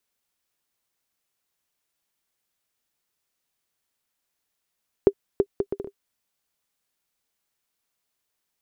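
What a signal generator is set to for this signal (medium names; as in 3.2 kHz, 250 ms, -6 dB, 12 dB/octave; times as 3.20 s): bouncing ball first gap 0.33 s, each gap 0.61, 398 Hz, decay 63 ms -4 dBFS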